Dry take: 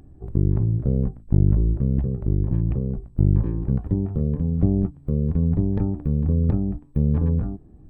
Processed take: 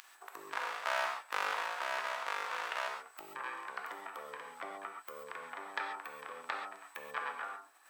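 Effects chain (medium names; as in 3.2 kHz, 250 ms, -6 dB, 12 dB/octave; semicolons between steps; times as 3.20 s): 0.52–2.88 s: comb filter that takes the minimum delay 1.1 ms; gate -45 dBFS, range -10 dB; high-pass 1.2 kHz 24 dB/octave; reverberation, pre-delay 3 ms, DRR 1.5 dB; tape noise reduction on one side only encoder only; trim +15 dB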